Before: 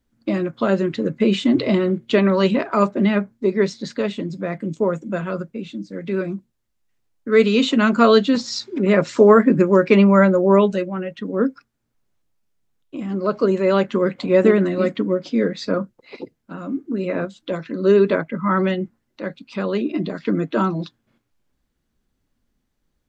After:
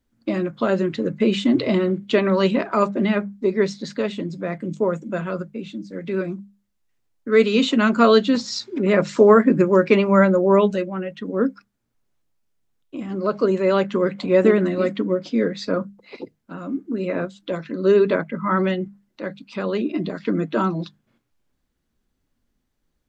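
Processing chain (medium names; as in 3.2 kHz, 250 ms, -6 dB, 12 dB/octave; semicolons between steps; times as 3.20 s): hum notches 50/100/150/200 Hz; trim -1 dB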